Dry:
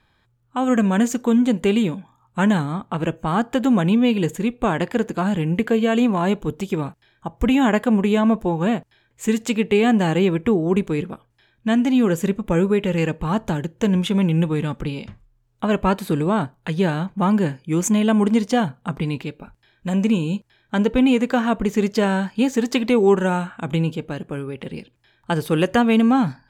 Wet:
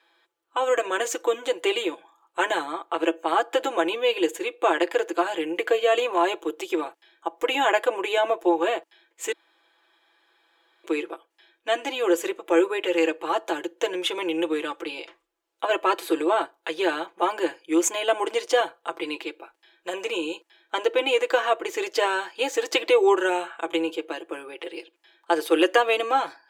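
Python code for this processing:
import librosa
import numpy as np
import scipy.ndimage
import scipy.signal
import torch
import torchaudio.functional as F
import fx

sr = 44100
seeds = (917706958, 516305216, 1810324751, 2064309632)

y = fx.edit(x, sr, fx.room_tone_fill(start_s=9.32, length_s=1.52), tone=tone)
y = scipy.signal.sosfilt(scipy.signal.ellip(4, 1.0, 40, 330.0, 'highpass', fs=sr, output='sos'), y)
y = fx.peak_eq(y, sr, hz=3000.0, db=3.5, octaves=0.81)
y = y + 0.68 * np.pad(y, (int(6.0 * sr / 1000.0), 0))[:len(y)]
y = y * 10.0 ** (-1.0 / 20.0)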